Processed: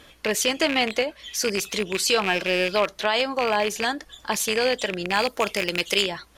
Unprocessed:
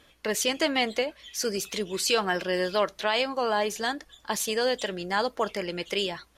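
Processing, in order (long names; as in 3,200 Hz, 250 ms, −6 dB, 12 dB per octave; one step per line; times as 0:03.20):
loose part that buzzes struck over −37 dBFS, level −18 dBFS
0:05.13–0:06.01: high-shelf EQ 7,600 Hz → 3,800 Hz +11.5 dB
in parallel at +2 dB: downward compressor, threshold −39 dBFS, peak gain reduction 18 dB
on the sum: level +1.5 dB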